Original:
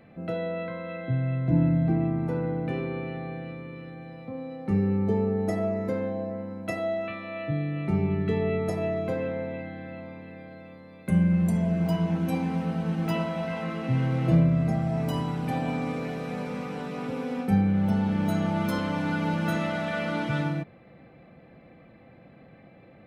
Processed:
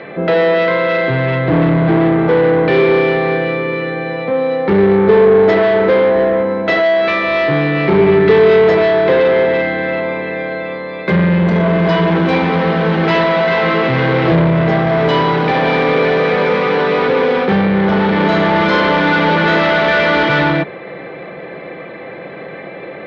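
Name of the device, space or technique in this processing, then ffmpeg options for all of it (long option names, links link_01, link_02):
overdrive pedal into a guitar cabinet: -filter_complex "[0:a]asplit=2[link_01][link_02];[link_02]highpass=frequency=720:poles=1,volume=29dB,asoftclip=type=tanh:threshold=-10dB[link_03];[link_01][link_03]amix=inputs=2:normalize=0,lowpass=frequency=6700:poles=1,volume=-6dB,highpass=81,equalizer=frequency=110:width_type=q:width=4:gain=-9,equalizer=frequency=240:width_type=q:width=4:gain=-10,equalizer=frequency=400:width_type=q:width=4:gain=6,equalizer=frequency=750:width_type=q:width=4:gain=-6,equalizer=frequency=1300:width_type=q:width=4:gain=-4,equalizer=frequency=2700:width_type=q:width=4:gain=-7,lowpass=frequency=3700:width=0.5412,lowpass=frequency=3700:width=1.3066,asettb=1/sr,asplit=3[link_04][link_05][link_06];[link_04]atrim=end=11.164[link_07];[link_05]atrim=start=11.16:end=11.79,asetpts=PTS-STARTPTS,afade=type=in:duration=0.004:curve=qsin,afade=type=out:start_time=0.626:duration=0.004:curve=qsin,lowpass=5900[link_08];[link_06]atrim=start=11.786[link_09];[link_07][link_08]acrossfade=duration=0.004:curve1=hsin:curve2=qsin[link_10];[link_10][link_09]acrossfade=duration=0.004:curve1=qsin:curve2=hsin,volume=7.5dB"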